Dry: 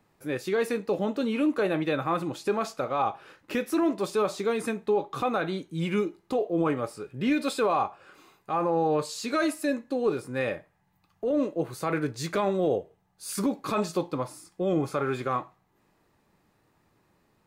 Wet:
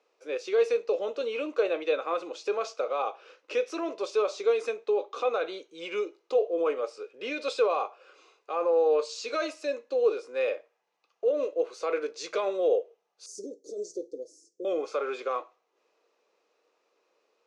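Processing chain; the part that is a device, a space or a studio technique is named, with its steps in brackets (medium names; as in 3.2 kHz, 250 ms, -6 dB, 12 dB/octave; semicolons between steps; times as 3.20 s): phone speaker on a table (cabinet simulation 420–6500 Hz, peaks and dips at 480 Hz +9 dB, 860 Hz -6 dB, 1.8 kHz -8 dB, 2.6 kHz +4 dB, 5.9 kHz +5 dB); 13.26–14.65 s: elliptic band-stop 410–6200 Hz, stop band 50 dB; trim -2 dB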